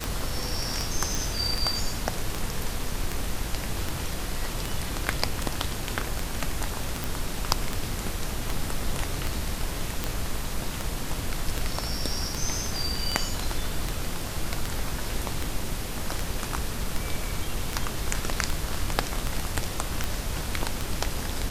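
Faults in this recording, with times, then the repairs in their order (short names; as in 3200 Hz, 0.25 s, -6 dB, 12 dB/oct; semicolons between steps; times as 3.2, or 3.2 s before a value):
tick 78 rpm
1.15 pop
7.04 pop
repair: de-click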